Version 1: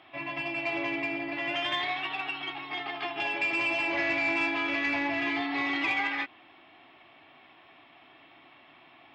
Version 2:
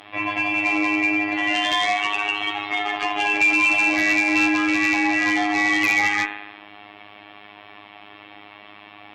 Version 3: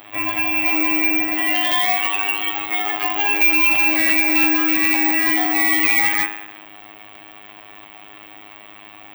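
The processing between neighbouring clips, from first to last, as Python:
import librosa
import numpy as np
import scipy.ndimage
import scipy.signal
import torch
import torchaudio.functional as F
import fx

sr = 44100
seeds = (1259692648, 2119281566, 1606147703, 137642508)

y1 = fx.rev_spring(x, sr, rt60_s=1.0, pass_ms=(42,), chirp_ms=55, drr_db=9.0)
y1 = fx.robotise(y1, sr, hz=103.0)
y1 = fx.cheby_harmonics(y1, sr, harmonics=(5, 7), levels_db=(-9, -26), full_scale_db=-12.5)
y1 = F.gain(torch.from_numpy(y1), 5.5).numpy()
y2 = (np.kron(y1[::2], np.eye(2)[0]) * 2)[:len(y1)]
y2 = fx.buffer_crackle(y2, sr, first_s=0.35, period_s=0.34, block=128, kind='repeat')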